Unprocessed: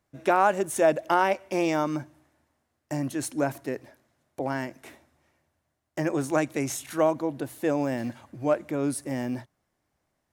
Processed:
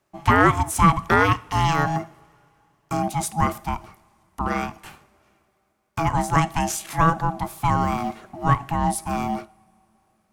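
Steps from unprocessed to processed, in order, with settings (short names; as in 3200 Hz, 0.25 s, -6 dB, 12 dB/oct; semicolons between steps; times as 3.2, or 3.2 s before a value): frequency shift +23 Hz; ring modulator 490 Hz; two-slope reverb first 0.44 s, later 3.4 s, from -22 dB, DRR 16 dB; gain +8 dB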